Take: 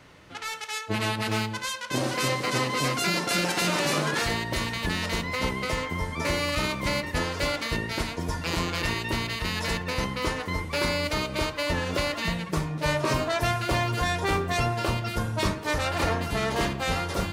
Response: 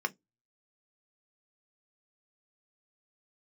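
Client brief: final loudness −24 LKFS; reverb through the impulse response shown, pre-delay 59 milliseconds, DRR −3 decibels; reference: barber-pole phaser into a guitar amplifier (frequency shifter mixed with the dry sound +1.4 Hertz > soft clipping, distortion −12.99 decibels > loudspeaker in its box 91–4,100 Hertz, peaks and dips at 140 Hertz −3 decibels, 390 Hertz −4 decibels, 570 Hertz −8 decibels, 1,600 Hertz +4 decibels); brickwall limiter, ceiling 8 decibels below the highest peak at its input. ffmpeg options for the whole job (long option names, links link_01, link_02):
-filter_complex "[0:a]alimiter=limit=-21.5dB:level=0:latency=1,asplit=2[link_01][link_02];[1:a]atrim=start_sample=2205,adelay=59[link_03];[link_02][link_03]afir=irnorm=-1:irlink=0,volume=-3dB[link_04];[link_01][link_04]amix=inputs=2:normalize=0,asplit=2[link_05][link_06];[link_06]afreqshift=1.4[link_07];[link_05][link_07]amix=inputs=2:normalize=1,asoftclip=threshold=-29.5dB,highpass=91,equalizer=frequency=140:width_type=q:width=4:gain=-3,equalizer=frequency=390:width_type=q:width=4:gain=-4,equalizer=frequency=570:width_type=q:width=4:gain=-8,equalizer=frequency=1600:width_type=q:width=4:gain=4,lowpass=frequency=4100:width=0.5412,lowpass=frequency=4100:width=1.3066,volume=10.5dB"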